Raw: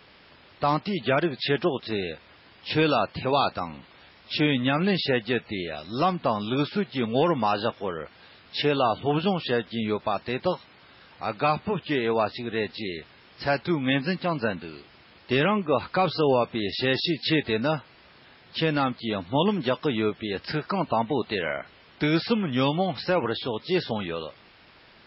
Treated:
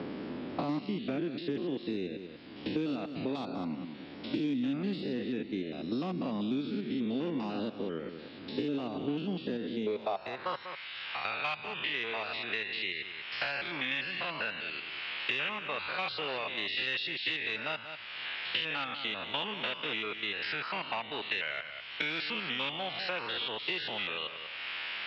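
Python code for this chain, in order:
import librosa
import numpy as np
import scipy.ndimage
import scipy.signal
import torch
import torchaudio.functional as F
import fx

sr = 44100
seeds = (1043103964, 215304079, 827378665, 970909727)

p1 = fx.spec_steps(x, sr, hold_ms=100)
p2 = 10.0 ** (-19.5 / 20.0) * np.tanh(p1 / 10.0 ** (-19.5 / 20.0))
p3 = fx.filter_sweep_bandpass(p2, sr, from_hz=270.0, to_hz=2900.0, start_s=9.62, end_s=10.92, q=2.5)
p4 = p3 + fx.echo_single(p3, sr, ms=193, db=-13.5, dry=0)
p5 = fx.band_squash(p4, sr, depth_pct=100)
y = p5 * librosa.db_to_amplitude(3.0)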